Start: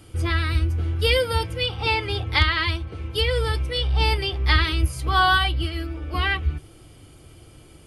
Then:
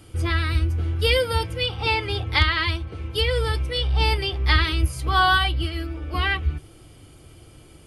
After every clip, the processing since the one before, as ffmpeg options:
-af anull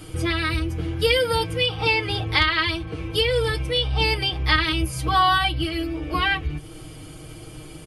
-af "aecho=1:1:6.4:0.65,acompressor=threshold=0.0141:ratio=1.5,volume=2.24"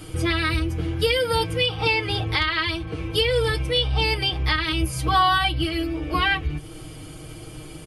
-af "alimiter=limit=0.299:level=0:latency=1:release=319,volume=1.12"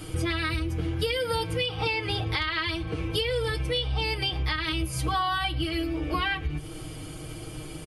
-af "acompressor=threshold=0.0562:ratio=4,aecho=1:1:113:0.0708"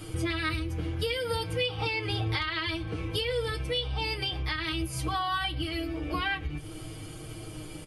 -af "flanger=delay=8.8:depth=2:regen=61:speed=0.42:shape=triangular,volume=1.19"

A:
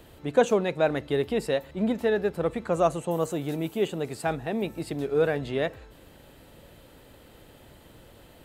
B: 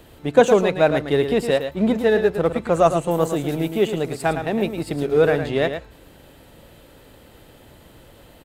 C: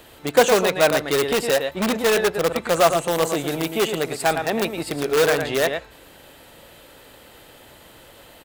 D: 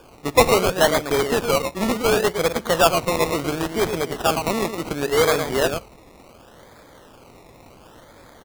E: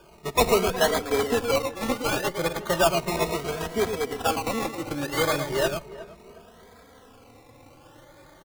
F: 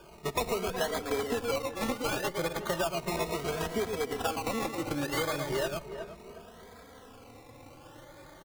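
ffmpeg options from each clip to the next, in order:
-filter_complex "[0:a]asplit=2[s0][s1];[s1]aeval=exprs='sgn(val(0))*max(abs(val(0))-0.0133,0)':c=same,volume=0.531[s2];[s0][s2]amix=inputs=2:normalize=0,aecho=1:1:110:0.376,volume=1.5"
-filter_complex "[0:a]asplit=2[s0][s1];[s1]aeval=exprs='(mod(4.47*val(0)+1,2)-1)/4.47':c=same,volume=0.422[s2];[s0][s2]amix=inputs=2:normalize=0,lowshelf=f=400:g=-12,volume=1.33"
-af "acrusher=samples=22:mix=1:aa=0.000001:lfo=1:lforange=13.2:lforate=0.7"
-filter_complex "[0:a]asplit=2[s0][s1];[s1]adelay=362,lowpass=f=1800:p=1,volume=0.158,asplit=2[s2][s3];[s3]adelay=362,lowpass=f=1800:p=1,volume=0.36,asplit=2[s4][s5];[s5]adelay=362,lowpass=f=1800:p=1,volume=0.36[s6];[s0][s2][s4][s6]amix=inputs=4:normalize=0,asplit=2[s7][s8];[s8]adelay=2.8,afreqshift=0.34[s9];[s7][s9]amix=inputs=2:normalize=1,volume=0.841"
-af "acompressor=threshold=0.0398:ratio=6"

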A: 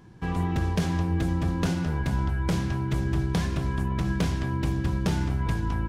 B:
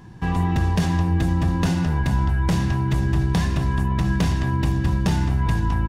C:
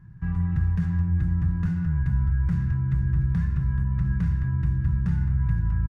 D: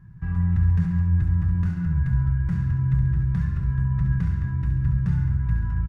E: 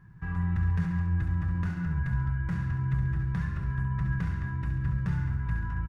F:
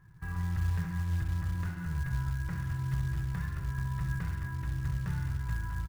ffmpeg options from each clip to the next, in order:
-filter_complex "[0:a]aecho=1:1:1.1:0.3,asplit=2[s0][s1];[s1]alimiter=limit=0.075:level=0:latency=1,volume=1.12[s2];[s0][s2]amix=inputs=2:normalize=0"
-af "firequalizer=gain_entry='entry(160,0);entry(240,-16);entry(660,-25);entry(1400,-6);entry(3100,-25)':delay=0.05:min_phase=1,volume=0.794"
-af "flanger=delay=1.7:depth=1.9:regen=-75:speed=1:shape=sinusoidal,aecho=1:1:68|136|204|272|340|408|476:0.376|0.214|0.122|0.0696|0.0397|0.0226|0.0129,volume=1.68"
-af "bass=f=250:g=-10,treble=f=4000:g=-3,volume=1.33"
-af "equalizer=f=210:t=o:w=0.59:g=-8,acrusher=bits=6:mode=log:mix=0:aa=0.000001,volume=0.708"

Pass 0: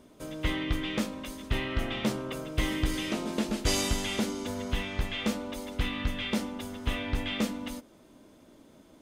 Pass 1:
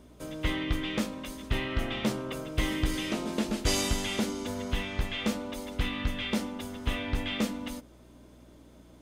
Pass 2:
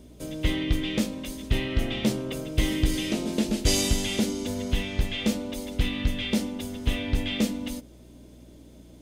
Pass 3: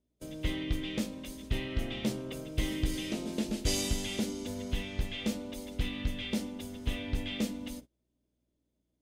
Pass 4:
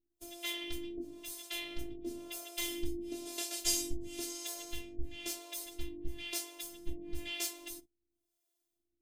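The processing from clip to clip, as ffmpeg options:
-af "aeval=exprs='val(0)+0.00158*(sin(2*PI*60*n/s)+sin(2*PI*2*60*n/s)/2+sin(2*PI*3*60*n/s)/3+sin(2*PI*4*60*n/s)/4+sin(2*PI*5*60*n/s)/5)':c=same"
-af "equalizer=f=1200:t=o:w=1.4:g=-11,volume=1.88"
-af "agate=range=0.0631:threshold=0.0112:ratio=16:detection=peak,volume=0.422"
-filter_complex "[0:a]afftfilt=real='hypot(re,im)*cos(PI*b)':imag='0':win_size=512:overlap=0.75,acrossover=split=450[s0][s1];[s0]aeval=exprs='val(0)*(1-1/2+1/2*cos(2*PI*1*n/s))':c=same[s2];[s1]aeval=exprs='val(0)*(1-1/2-1/2*cos(2*PI*1*n/s))':c=same[s3];[s2][s3]amix=inputs=2:normalize=0,crystalizer=i=3:c=0,volume=1.12"

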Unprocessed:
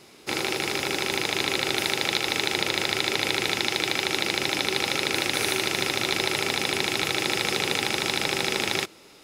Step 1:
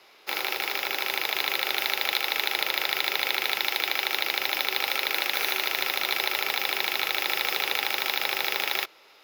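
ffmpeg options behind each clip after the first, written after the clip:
-filter_complex "[0:a]acrossover=split=510 6100:gain=0.0794 1 0.251[s0][s1][s2];[s0][s1][s2]amix=inputs=3:normalize=0,adynamicsmooth=sensitivity=6:basefreq=7200,aexciter=amount=14.5:drive=8.7:freq=12000"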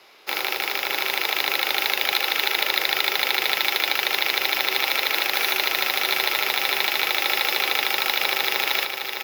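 -af "aecho=1:1:610|1220|1830|2440|3050|3660|4270:0.447|0.25|0.14|0.0784|0.0439|0.0246|0.0138,volume=1.5"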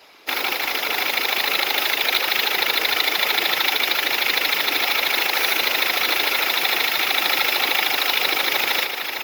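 -af "afftfilt=real='hypot(re,im)*cos(2*PI*random(0))':imag='hypot(re,im)*sin(2*PI*random(1))':win_size=512:overlap=0.75,volume=2.66"

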